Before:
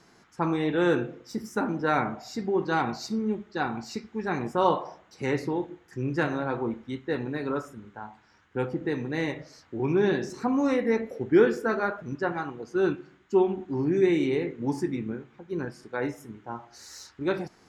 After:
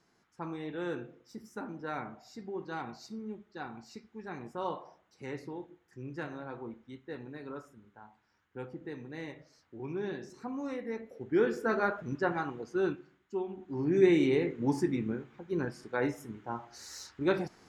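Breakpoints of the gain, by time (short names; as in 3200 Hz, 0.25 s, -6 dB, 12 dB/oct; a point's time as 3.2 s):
11.07 s -13 dB
11.78 s -2 dB
12.56 s -2 dB
13.44 s -14 dB
14.02 s -1 dB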